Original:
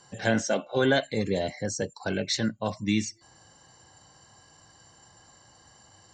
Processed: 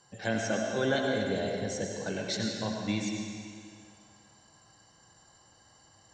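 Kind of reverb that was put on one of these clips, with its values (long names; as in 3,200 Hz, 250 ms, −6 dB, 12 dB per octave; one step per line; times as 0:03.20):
comb and all-pass reverb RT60 2.2 s, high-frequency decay 0.95×, pre-delay 55 ms, DRR 0.5 dB
level −6.5 dB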